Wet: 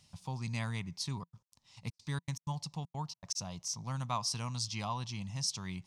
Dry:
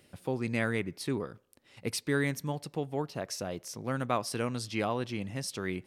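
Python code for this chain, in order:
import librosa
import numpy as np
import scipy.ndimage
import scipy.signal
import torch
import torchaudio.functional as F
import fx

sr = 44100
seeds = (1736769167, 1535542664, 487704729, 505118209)

y = fx.step_gate(x, sr, bpm=158, pattern='.xx.x.xxxx', floor_db=-60.0, edge_ms=4.5, at=(1.06, 3.35), fade=0.02)
y = fx.curve_eq(y, sr, hz=(170.0, 320.0, 480.0, 980.0, 1500.0, 6100.0, 12000.0), db=(0, -19, -20, 2, -14, 8, -11))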